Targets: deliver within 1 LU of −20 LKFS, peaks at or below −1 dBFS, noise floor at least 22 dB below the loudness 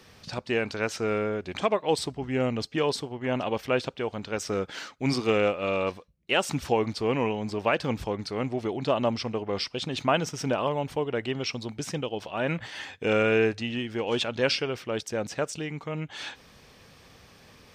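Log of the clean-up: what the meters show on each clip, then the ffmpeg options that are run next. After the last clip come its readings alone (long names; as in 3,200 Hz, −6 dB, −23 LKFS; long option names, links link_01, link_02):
integrated loudness −28.5 LKFS; sample peak −10.5 dBFS; target loudness −20.0 LKFS
→ -af "volume=8.5dB"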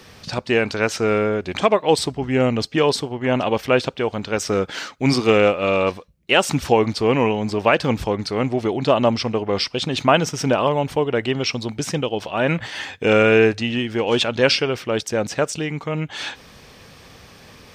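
integrated loudness −20.0 LKFS; sample peak −2.0 dBFS; background noise floor −46 dBFS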